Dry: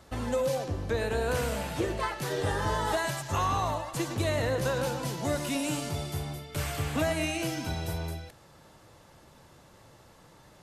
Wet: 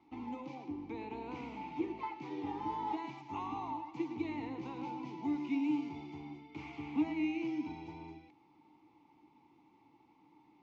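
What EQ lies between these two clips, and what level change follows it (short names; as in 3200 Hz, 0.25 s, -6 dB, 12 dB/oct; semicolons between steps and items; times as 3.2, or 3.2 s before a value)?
vowel filter u; steep low-pass 6600 Hz 48 dB/oct; +3.0 dB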